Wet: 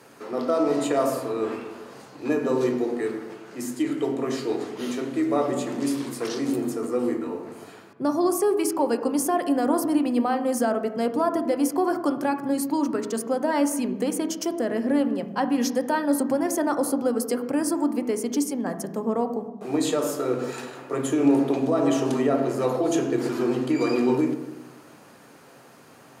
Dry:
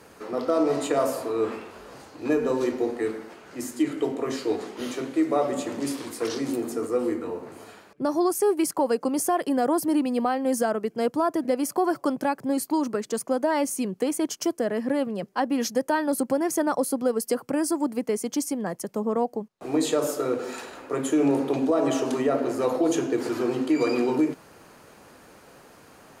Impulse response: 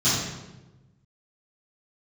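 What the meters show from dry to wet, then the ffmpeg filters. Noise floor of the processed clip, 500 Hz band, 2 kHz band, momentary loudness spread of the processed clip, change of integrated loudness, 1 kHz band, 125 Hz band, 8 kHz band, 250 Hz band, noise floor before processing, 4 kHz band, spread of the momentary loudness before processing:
−50 dBFS, +0.5 dB, +0.5 dB, 8 LU, +1.0 dB, +0.5 dB, +4.0 dB, 0.0 dB, +2.0 dB, −52 dBFS, 0.0 dB, 8 LU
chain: -filter_complex "[0:a]highpass=150,asplit=2[link_01][link_02];[link_02]bass=frequency=250:gain=-1,treble=frequency=4000:gain=-15[link_03];[1:a]atrim=start_sample=2205,lowpass=3400[link_04];[link_03][link_04]afir=irnorm=-1:irlink=0,volume=-22.5dB[link_05];[link_01][link_05]amix=inputs=2:normalize=0"

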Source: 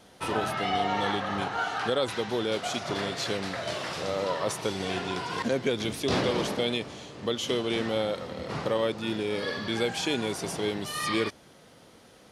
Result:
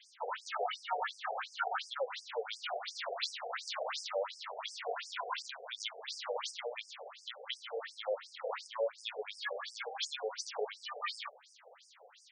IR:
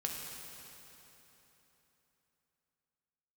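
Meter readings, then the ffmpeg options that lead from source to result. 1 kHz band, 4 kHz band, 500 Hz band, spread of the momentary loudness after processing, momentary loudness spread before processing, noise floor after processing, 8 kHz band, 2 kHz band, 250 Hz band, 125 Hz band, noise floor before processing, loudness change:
−8.0 dB, −8.0 dB, −10.5 dB, 8 LU, 5 LU, −62 dBFS, −9.5 dB, −8.5 dB, below −40 dB, below −40 dB, −55 dBFS, −10.0 dB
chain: -af "acompressor=threshold=-30dB:ratio=6,aeval=exprs='0.106*(cos(1*acos(clip(val(0)/0.106,-1,1)))-cos(1*PI/2))+0.00211*(cos(2*acos(clip(val(0)/0.106,-1,1)))-cos(2*PI/2))+0.00299*(cos(3*acos(clip(val(0)/0.106,-1,1)))-cos(3*PI/2))':channel_layout=same,afftfilt=real='re*between(b*sr/1024,550*pow(6900/550,0.5+0.5*sin(2*PI*2.8*pts/sr))/1.41,550*pow(6900/550,0.5+0.5*sin(2*PI*2.8*pts/sr))*1.41)':imag='im*between(b*sr/1024,550*pow(6900/550,0.5+0.5*sin(2*PI*2.8*pts/sr))/1.41,550*pow(6900/550,0.5+0.5*sin(2*PI*2.8*pts/sr))*1.41)':win_size=1024:overlap=0.75,volume=4dB"

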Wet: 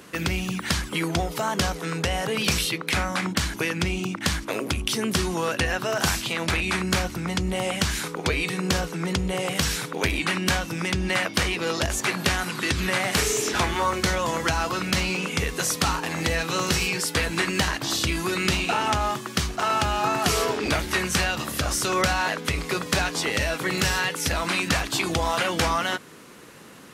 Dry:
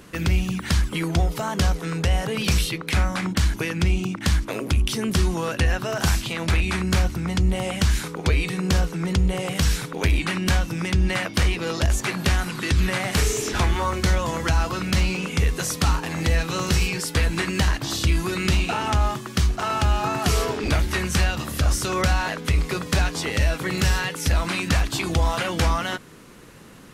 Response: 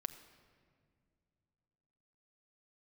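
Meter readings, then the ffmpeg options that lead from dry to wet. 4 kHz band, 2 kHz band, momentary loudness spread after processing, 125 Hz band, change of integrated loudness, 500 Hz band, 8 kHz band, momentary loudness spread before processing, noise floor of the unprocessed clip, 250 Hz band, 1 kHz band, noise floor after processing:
+2.0 dB, +2.0 dB, 4 LU, −7.5 dB, −1.5 dB, +1.0 dB, +2.0 dB, 2 LU, −37 dBFS, −2.0 dB, +1.5 dB, −38 dBFS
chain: -af "highpass=frequency=260:poles=1,volume=2dB"

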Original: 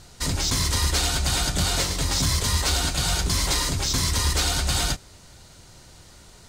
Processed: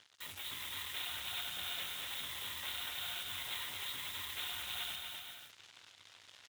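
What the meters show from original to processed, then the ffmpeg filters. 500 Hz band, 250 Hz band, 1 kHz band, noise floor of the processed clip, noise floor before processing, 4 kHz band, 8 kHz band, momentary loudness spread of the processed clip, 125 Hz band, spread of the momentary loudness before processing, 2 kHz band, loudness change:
−24.5 dB, −30.5 dB, −18.5 dB, −62 dBFS, −49 dBFS, −14.0 dB, −23.5 dB, 16 LU, −35.0 dB, 2 LU, −13.0 dB, −17.0 dB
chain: -af "aresample=8000,asoftclip=type=tanh:threshold=-23.5dB,aresample=44100,acrusher=bits=6:mix=0:aa=0.5,equalizer=frequency=99:width=3.7:gain=12.5,aecho=1:1:240|384|470.4|522.2|553.3:0.631|0.398|0.251|0.158|0.1,areverse,acompressor=mode=upward:threshold=-31dB:ratio=2.5,areverse,aderivative,volume=-1dB"

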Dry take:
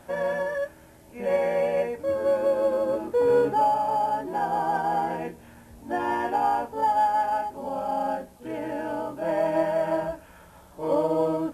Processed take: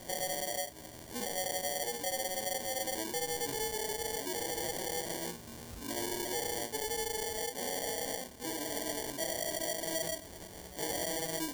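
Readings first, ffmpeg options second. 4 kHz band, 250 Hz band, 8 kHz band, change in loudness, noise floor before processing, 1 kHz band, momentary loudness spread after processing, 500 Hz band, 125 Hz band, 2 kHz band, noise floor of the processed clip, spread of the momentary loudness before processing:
+10.0 dB, −11.0 dB, can't be measured, −9.5 dB, −51 dBFS, −16.5 dB, 5 LU, −13.5 dB, −8.0 dB, −5.5 dB, −49 dBFS, 11 LU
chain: -af "adynamicsmooth=sensitivity=1:basefreq=1400,crystalizer=i=8:c=0,volume=28dB,asoftclip=hard,volume=-28dB,alimiter=level_in=8.5dB:limit=-24dB:level=0:latency=1:release=194,volume=-8.5dB,flanger=delay=17:depth=7.7:speed=1.5,lowpass=7900,acompressor=threshold=-42dB:ratio=3,equalizer=frequency=1800:width=1.4:gain=-8,acrusher=samples=34:mix=1:aa=0.000001,bass=frequency=250:gain=-2,treble=frequency=4000:gain=12,volume=5.5dB"

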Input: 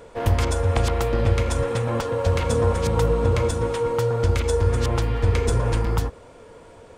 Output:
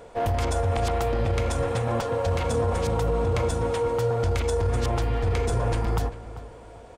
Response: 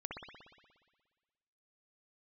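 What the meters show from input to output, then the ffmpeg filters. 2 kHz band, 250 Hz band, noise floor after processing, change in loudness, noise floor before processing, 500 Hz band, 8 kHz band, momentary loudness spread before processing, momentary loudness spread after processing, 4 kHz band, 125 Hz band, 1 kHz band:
−3.0 dB, −3.5 dB, −44 dBFS, −3.5 dB, −46 dBFS, −2.5 dB, −3.5 dB, 3 LU, 3 LU, −3.5 dB, −4.0 dB, −0.5 dB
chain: -filter_complex "[0:a]equalizer=frequency=720:width=5.9:gain=9,asplit=2[link_01][link_02];[link_02]adelay=393,lowpass=frequency=2800:poles=1,volume=-15.5dB,asplit=2[link_03][link_04];[link_04]adelay=393,lowpass=frequency=2800:poles=1,volume=0.3,asplit=2[link_05][link_06];[link_06]adelay=393,lowpass=frequency=2800:poles=1,volume=0.3[link_07];[link_03][link_05][link_07]amix=inputs=3:normalize=0[link_08];[link_01][link_08]amix=inputs=2:normalize=0,alimiter=limit=-14.5dB:level=0:latency=1:release=15,volume=-2dB"

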